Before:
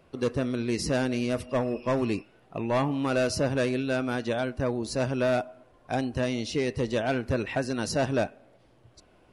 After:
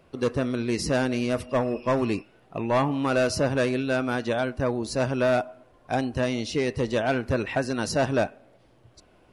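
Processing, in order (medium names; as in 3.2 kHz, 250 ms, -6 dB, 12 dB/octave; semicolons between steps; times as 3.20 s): dynamic bell 1.1 kHz, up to +3 dB, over -37 dBFS, Q 0.87; trim +1.5 dB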